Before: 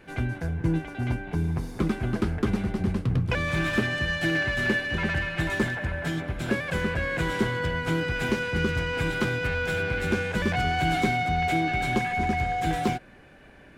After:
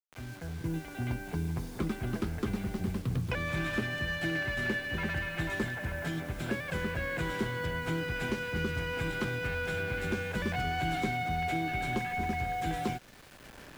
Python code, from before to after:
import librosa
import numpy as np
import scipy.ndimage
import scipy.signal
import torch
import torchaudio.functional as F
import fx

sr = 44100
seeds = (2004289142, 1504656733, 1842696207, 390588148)

y = fx.fade_in_head(x, sr, length_s=1.03)
y = fx.quant_dither(y, sr, seeds[0], bits=8, dither='none')
y = fx.band_squash(y, sr, depth_pct=40)
y = y * 10.0 ** (-7.0 / 20.0)